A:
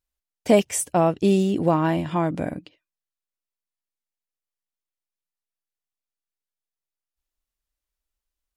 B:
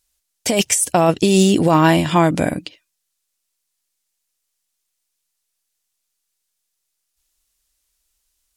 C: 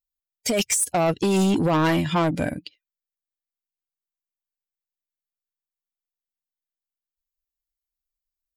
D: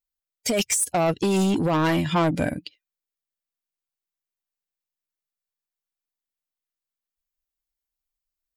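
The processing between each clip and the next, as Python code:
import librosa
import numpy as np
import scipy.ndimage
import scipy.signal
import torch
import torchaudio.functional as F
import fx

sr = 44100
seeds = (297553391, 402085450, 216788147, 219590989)

y1 = fx.peak_eq(x, sr, hz=8300.0, db=13.5, octaves=2.8)
y1 = fx.over_compress(y1, sr, threshold_db=-19.0, ratio=-1.0)
y1 = F.gain(torch.from_numpy(y1), 6.0).numpy()
y2 = fx.bin_expand(y1, sr, power=1.5)
y2 = 10.0 ** (-16.0 / 20.0) * np.tanh(y2 / 10.0 ** (-16.0 / 20.0))
y3 = fx.rider(y2, sr, range_db=10, speed_s=0.5)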